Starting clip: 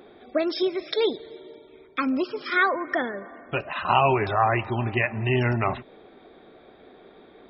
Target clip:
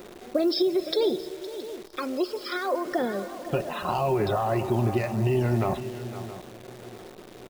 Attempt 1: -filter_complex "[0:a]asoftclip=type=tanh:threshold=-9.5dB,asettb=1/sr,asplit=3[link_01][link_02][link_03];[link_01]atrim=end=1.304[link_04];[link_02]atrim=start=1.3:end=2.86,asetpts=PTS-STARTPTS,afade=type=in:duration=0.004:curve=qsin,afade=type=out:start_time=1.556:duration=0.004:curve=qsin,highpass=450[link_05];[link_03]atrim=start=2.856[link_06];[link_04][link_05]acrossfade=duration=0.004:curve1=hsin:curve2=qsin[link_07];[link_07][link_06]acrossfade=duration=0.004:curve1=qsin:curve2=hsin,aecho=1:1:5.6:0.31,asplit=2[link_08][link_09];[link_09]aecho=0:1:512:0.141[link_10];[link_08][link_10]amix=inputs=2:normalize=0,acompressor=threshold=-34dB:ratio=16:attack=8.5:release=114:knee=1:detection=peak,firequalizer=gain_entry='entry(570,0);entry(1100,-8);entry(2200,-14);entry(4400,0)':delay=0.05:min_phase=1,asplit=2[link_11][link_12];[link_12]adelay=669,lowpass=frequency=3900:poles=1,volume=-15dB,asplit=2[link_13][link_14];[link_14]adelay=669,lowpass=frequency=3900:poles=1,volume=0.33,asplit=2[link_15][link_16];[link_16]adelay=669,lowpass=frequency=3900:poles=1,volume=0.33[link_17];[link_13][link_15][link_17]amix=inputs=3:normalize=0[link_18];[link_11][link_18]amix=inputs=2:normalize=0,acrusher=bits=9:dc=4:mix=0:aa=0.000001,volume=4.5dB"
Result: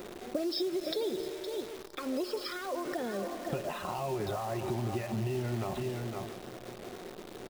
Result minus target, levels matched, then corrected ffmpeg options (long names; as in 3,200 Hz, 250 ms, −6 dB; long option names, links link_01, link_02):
downward compressor: peak gain reduction +10 dB
-filter_complex "[0:a]asoftclip=type=tanh:threshold=-9.5dB,asettb=1/sr,asplit=3[link_01][link_02][link_03];[link_01]atrim=end=1.304[link_04];[link_02]atrim=start=1.3:end=2.86,asetpts=PTS-STARTPTS,afade=type=in:duration=0.004:curve=qsin,afade=type=out:start_time=1.556:duration=0.004:curve=qsin,highpass=450[link_05];[link_03]atrim=start=2.856[link_06];[link_04][link_05]acrossfade=duration=0.004:curve1=hsin:curve2=qsin[link_07];[link_07][link_06]acrossfade=duration=0.004:curve1=qsin:curve2=hsin,aecho=1:1:5.6:0.31,asplit=2[link_08][link_09];[link_09]aecho=0:1:512:0.141[link_10];[link_08][link_10]amix=inputs=2:normalize=0,acompressor=threshold=-23.5dB:ratio=16:attack=8.5:release=114:knee=1:detection=peak,firequalizer=gain_entry='entry(570,0);entry(1100,-8);entry(2200,-14);entry(4400,0)':delay=0.05:min_phase=1,asplit=2[link_11][link_12];[link_12]adelay=669,lowpass=frequency=3900:poles=1,volume=-15dB,asplit=2[link_13][link_14];[link_14]adelay=669,lowpass=frequency=3900:poles=1,volume=0.33,asplit=2[link_15][link_16];[link_16]adelay=669,lowpass=frequency=3900:poles=1,volume=0.33[link_17];[link_13][link_15][link_17]amix=inputs=3:normalize=0[link_18];[link_11][link_18]amix=inputs=2:normalize=0,acrusher=bits=9:dc=4:mix=0:aa=0.000001,volume=4.5dB"